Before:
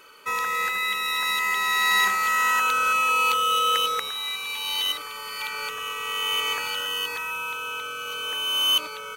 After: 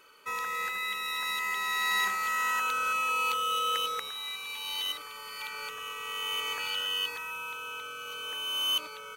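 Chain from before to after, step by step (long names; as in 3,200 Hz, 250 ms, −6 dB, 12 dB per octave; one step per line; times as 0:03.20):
0:06.59–0:07.10: parametric band 3,200 Hz +5.5 dB 1 octave
level −7.5 dB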